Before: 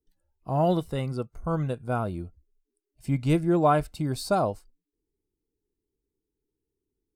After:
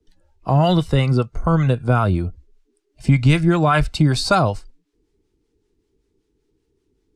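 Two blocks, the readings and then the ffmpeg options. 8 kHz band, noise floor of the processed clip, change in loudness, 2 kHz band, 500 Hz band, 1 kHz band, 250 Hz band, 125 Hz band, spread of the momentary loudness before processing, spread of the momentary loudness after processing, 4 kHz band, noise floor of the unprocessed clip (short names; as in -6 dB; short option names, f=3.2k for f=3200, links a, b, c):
+9.0 dB, -70 dBFS, +9.0 dB, +14.0 dB, +5.0 dB, +6.5 dB, +8.5 dB, +12.0 dB, 17 LU, 8 LU, +14.5 dB, -85 dBFS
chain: -filter_complex "[0:a]lowpass=6.3k,acrossover=split=140|1200|2900[a][b][c][d];[b]acompressor=threshold=-35dB:ratio=6[e];[a][e][c][d]amix=inputs=4:normalize=0,acrossover=split=590[f][g];[f]aeval=exprs='val(0)*(1-0.5/2+0.5/2*cos(2*PI*5.2*n/s))':c=same[h];[g]aeval=exprs='val(0)*(1-0.5/2-0.5/2*cos(2*PI*5.2*n/s))':c=same[i];[h][i]amix=inputs=2:normalize=0,alimiter=level_in=23.5dB:limit=-1dB:release=50:level=0:latency=1,volume=-4.5dB"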